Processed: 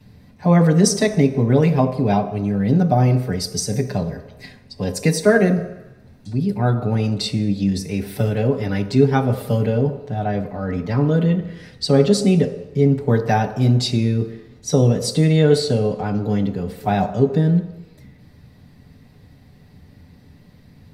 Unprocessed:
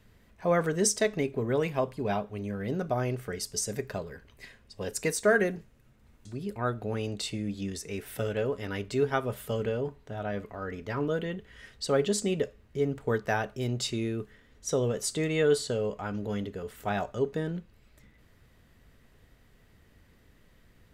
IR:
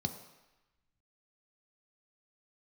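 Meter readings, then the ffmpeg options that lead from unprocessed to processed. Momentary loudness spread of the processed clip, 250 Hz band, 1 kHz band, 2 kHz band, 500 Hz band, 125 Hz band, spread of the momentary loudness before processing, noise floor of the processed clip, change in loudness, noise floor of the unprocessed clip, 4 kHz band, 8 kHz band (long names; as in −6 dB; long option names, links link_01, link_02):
10 LU, +15.0 dB, +10.5 dB, +5.5 dB, +9.0 dB, +17.5 dB, 12 LU, −49 dBFS, +12.0 dB, −61 dBFS, +10.0 dB, +5.5 dB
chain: -filter_complex "[0:a]asplit=2[link_01][link_02];[1:a]atrim=start_sample=2205,adelay=6[link_03];[link_02][link_03]afir=irnorm=-1:irlink=0,volume=3.5dB[link_04];[link_01][link_04]amix=inputs=2:normalize=0,volume=1dB"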